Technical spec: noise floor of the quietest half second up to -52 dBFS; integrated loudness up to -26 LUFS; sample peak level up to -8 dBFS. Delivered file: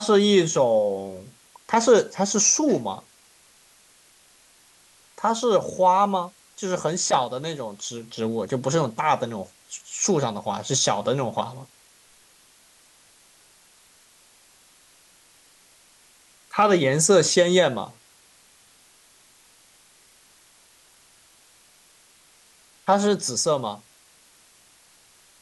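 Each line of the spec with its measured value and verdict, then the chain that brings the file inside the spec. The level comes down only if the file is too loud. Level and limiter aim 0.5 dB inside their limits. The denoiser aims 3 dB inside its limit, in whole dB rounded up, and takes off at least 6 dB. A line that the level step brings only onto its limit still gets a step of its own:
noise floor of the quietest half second -56 dBFS: OK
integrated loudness -22.0 LUFS: fail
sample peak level -4.5 dBFS: fail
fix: gain -4.5 dB

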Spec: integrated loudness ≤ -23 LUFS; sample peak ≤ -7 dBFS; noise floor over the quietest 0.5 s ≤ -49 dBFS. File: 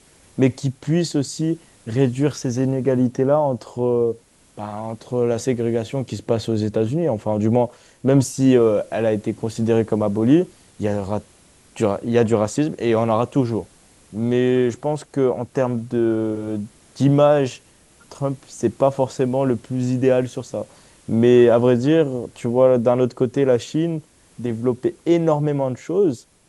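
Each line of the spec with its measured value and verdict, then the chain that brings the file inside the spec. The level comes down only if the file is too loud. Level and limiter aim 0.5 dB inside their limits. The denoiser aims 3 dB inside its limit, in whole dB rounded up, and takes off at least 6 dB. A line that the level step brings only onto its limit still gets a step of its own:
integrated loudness -20.0 LUFS: fail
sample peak -3.0 dBFS: fail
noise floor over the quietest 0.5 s -52 dBFS: OK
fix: gain -3.5 dB; limiter -7.5 dBFS

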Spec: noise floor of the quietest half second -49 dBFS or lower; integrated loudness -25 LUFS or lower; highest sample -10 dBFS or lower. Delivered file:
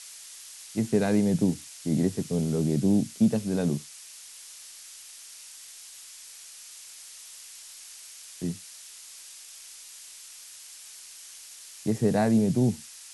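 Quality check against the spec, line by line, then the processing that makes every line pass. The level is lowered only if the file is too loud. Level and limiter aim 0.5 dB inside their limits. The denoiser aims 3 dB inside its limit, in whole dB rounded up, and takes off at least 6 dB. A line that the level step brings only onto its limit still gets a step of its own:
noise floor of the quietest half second -46 dBFS: fail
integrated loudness -26.5 LUFS: OK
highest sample -11.5 dBFS: OK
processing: denoiser 6 dB, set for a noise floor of -46 dBFS

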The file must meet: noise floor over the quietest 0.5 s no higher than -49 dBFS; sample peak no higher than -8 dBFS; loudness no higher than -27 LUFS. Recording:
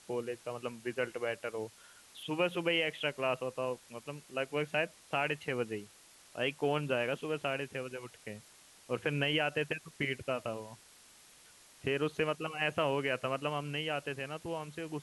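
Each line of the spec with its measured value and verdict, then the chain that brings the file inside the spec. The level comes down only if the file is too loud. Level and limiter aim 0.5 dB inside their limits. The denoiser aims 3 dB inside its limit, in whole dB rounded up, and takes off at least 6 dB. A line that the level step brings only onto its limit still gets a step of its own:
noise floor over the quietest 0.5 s -59 dBFS: OK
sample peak -17.0 dBFS: OK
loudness -35.5 LUFS: OK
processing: none

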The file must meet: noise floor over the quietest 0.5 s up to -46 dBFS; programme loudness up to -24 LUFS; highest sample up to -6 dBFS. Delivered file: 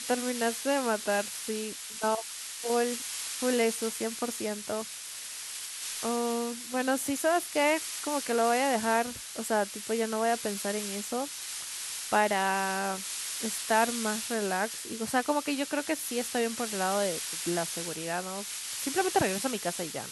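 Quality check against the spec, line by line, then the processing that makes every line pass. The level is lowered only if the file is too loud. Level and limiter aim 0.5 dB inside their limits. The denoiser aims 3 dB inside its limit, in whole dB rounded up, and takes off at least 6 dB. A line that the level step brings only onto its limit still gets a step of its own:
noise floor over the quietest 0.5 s -41 dBFS: fail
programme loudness -30.0 LUFS: OK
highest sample -11.0 dBFS: OK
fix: denoiser 8 dB, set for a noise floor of -41 dBFS

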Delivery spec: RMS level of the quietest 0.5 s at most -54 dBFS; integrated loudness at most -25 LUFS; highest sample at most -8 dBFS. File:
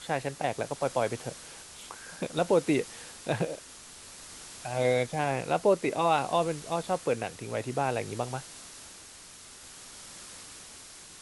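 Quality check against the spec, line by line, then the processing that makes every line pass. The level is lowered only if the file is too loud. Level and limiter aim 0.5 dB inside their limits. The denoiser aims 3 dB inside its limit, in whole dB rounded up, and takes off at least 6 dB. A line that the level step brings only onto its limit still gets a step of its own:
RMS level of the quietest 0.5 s -49 dBFS: fail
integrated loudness -30.0 LUFS: OK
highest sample -13.0 dBFS: OK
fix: denoiser 8 dB, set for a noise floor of -49 dBFS

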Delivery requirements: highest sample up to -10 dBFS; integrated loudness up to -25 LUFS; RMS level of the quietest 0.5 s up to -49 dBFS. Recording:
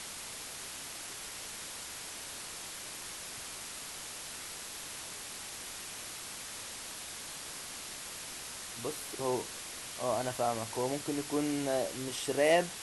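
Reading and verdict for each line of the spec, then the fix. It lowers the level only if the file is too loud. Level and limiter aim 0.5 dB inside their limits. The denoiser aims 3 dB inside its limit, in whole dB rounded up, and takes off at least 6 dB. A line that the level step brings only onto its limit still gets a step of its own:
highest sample -14.0 dBFS: OK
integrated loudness -37.0 LUFS: OK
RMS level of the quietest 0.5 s -44 dBFS: fail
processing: denoiser 8 dB, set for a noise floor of -44 dBFS

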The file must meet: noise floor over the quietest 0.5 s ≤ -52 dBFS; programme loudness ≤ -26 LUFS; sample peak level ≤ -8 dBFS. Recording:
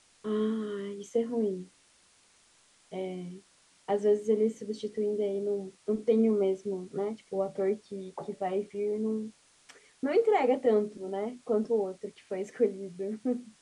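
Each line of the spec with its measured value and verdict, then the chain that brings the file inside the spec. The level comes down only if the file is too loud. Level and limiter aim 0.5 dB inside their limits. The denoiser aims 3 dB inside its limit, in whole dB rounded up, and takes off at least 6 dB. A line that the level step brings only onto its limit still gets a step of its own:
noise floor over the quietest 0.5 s -64 dBFS: OK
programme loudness -31.0 LUFS: OK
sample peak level -14.5 dBFS: OK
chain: none

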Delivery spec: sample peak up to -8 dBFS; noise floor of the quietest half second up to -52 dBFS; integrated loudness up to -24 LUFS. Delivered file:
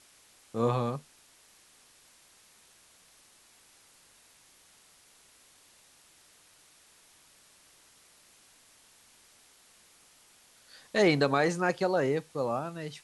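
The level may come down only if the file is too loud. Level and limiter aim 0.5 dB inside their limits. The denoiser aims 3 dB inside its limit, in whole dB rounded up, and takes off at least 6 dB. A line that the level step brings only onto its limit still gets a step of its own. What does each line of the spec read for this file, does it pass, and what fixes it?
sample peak -12.0 dBFS: OK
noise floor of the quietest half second -61 dBFS: OK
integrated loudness -29.0 LUFS: OK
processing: none

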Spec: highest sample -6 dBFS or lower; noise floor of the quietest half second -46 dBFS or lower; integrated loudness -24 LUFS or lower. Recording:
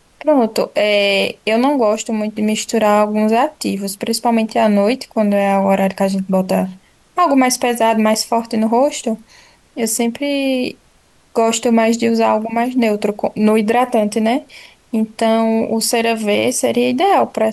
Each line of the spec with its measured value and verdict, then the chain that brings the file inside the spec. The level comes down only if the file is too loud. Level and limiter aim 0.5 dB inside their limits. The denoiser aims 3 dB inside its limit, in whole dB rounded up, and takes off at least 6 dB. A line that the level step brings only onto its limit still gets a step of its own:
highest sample -4.5 dBFS: fail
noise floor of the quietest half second -53 dBFS: OK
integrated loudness -16.0 LUFS: fail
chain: gain -8.5 dB

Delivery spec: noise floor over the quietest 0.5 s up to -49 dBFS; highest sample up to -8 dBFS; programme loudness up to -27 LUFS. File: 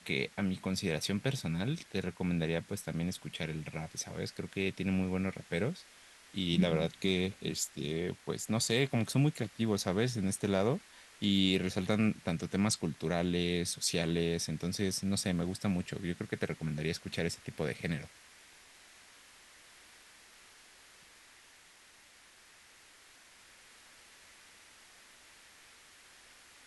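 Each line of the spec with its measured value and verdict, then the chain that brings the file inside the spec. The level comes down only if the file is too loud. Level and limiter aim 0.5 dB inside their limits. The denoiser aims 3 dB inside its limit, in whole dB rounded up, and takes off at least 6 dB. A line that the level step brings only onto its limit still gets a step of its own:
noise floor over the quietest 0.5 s -60 dBFS: OK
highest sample -15.0 dBFS: OK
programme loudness -34.0 LUFS: OK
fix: none

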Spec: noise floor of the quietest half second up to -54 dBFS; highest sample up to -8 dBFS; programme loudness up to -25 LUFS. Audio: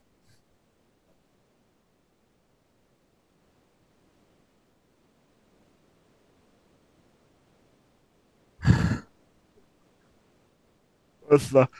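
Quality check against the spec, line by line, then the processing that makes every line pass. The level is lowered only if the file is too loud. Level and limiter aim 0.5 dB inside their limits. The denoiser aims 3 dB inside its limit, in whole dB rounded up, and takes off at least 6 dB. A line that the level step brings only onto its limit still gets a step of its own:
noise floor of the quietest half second -68 dBFS: OK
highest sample -5.5 dBFS: fail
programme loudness -23.5 LUFS: fail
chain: gain -2 dB; limiter -8.5 dBFS

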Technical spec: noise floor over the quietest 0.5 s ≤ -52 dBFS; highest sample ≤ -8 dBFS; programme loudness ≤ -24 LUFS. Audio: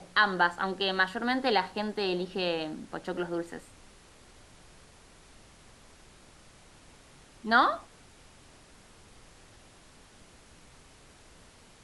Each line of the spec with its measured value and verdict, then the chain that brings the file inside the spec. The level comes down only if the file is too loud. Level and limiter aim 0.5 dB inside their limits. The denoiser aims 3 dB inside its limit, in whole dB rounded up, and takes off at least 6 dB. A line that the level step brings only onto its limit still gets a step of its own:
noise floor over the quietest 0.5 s -56 dBFS: OK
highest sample -9.5 dBFS: OK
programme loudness -29.0 LUFS: OK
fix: none

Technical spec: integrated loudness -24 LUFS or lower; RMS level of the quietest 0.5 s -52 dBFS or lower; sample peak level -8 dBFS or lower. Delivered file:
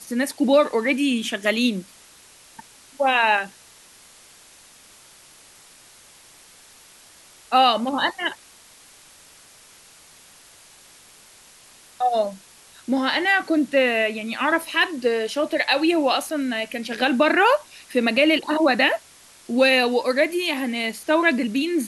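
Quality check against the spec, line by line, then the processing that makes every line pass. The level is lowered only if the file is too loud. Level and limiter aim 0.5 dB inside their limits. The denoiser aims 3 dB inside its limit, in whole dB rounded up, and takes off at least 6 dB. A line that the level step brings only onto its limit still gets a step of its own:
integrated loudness -20.5 LUFS: fail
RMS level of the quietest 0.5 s -50 dBFS: fail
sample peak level -6.0 dBFS: fail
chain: gain -4 dB

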